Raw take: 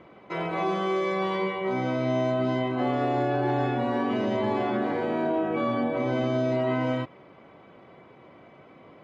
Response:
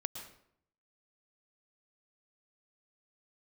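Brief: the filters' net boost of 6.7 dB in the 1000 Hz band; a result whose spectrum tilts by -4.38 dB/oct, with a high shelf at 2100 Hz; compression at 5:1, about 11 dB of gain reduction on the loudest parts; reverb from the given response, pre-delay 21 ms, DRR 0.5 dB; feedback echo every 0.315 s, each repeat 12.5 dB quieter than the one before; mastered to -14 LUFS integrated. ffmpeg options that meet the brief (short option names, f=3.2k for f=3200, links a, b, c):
-filter_complex "[0:a]equalizer=f=1k:t=o:g=7.5,highshelf=f=2.1k:g=7,acompressor=threshold=-32dB:ratio=5,aecho=1:1:315|630|945:0.237|0.0569|0.0137,asplit=2[a][b];[1:a]atrim=start_sample=2205,adelay=21[c];[b][c]afir=irnorm=-1:irlink=0,volume=-0.5dB[d];[a][d]amix=inputs=2:normalize=0,volume=16dB"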